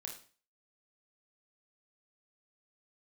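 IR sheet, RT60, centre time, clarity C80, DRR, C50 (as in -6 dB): 0.40 s, 24 ms, 12.5 dB, -0.5 dB, 8.0 dB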